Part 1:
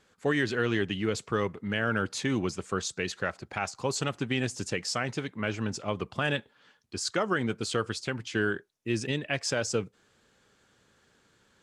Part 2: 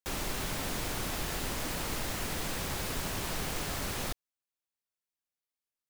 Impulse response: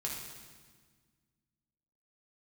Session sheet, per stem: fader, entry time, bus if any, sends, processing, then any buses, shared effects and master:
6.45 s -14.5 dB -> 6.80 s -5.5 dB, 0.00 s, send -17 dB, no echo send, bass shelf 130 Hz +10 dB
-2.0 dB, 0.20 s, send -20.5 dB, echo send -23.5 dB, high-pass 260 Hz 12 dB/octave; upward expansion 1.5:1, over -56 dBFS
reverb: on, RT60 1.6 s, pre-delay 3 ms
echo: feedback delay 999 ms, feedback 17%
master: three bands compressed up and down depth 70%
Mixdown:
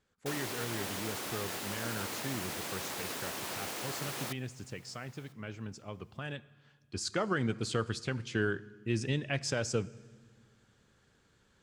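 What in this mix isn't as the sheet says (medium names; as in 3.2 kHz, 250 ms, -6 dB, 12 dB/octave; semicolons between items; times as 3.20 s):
stem 2: send off; master: missing three bands compressed up and down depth 70%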